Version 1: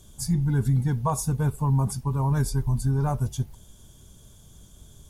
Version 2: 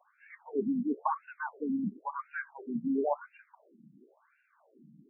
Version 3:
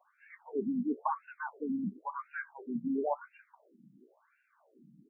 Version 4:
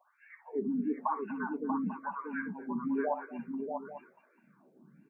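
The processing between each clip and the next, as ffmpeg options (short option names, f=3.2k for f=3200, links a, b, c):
-filter_complex "[0:a]afftfilt=real='re*lt(hypot(re,im),0.355)':imag='im*lt(hypot(re,im),0.355)':win_size=1024:overlap=0.75,acrossover=split=5200[a][b];[b]acompressor=threshold=-44dB:ratio=4:attack=1:release=60[c];[a][c]amix=inputs=2:normalize=0,afftfilt=real='re*between(b*sr/1024,210*pow(2000/210,0.5+0.5*sin(2*PI*0.96*pts/sr))/1.41,210*pow(2000/210,0.5+0.5*sin(2*PI*0.96*pts/sr))*1.41)':imag='im*between(b*sr/1024,210*pow(2000/210,0.5+0.5*sin(2*PI*0.96*pts/sr))/1.41,210*pow(2000/210,0.5+0.5*sin(2*PI*0.96*pts/sr))*1.41)':win_size=1024:overlap=0.75,volume=5dB"
-filter_complex "[0:a]asplit=2[a][b];[b]adelay=16,volume=-14dB[c];[a][c]amix=inputs=2:normalize=0,volume=-2dB"
-af "aecho=1:1:62|70|241|637|842:0.224|0.141|0.106|0.531|0.2"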